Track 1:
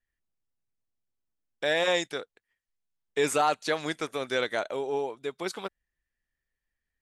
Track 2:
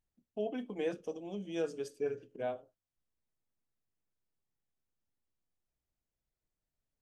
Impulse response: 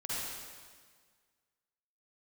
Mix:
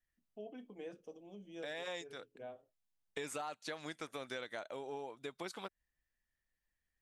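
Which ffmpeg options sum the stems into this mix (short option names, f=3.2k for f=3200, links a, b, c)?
-filter_complex "[0:a]equalizer=f=410:t=o:w=0.34:g=-4.5,volume=-3dB[a];[1:a]volume=-11.5dB,asplit=2[b][c];[c]apad=whole_len=309328[d];[a][d]sidechaincompress=threshold=-50dB:ratio=8:attack=16:release=442[e];[e][b]amix=inputs=2:normalize=0,acompressor=threshold=-41dB:ratio=5"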